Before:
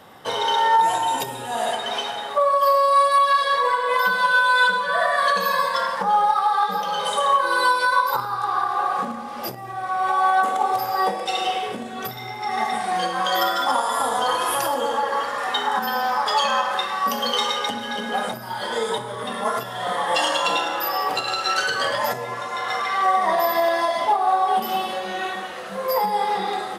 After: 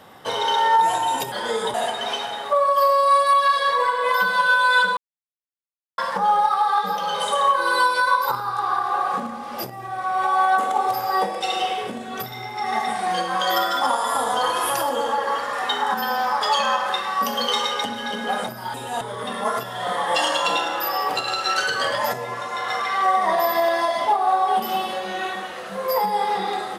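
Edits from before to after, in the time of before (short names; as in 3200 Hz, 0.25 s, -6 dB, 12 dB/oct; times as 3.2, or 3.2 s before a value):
1.32–1.59 swap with 18.59–19.01
4.82–5.83 mute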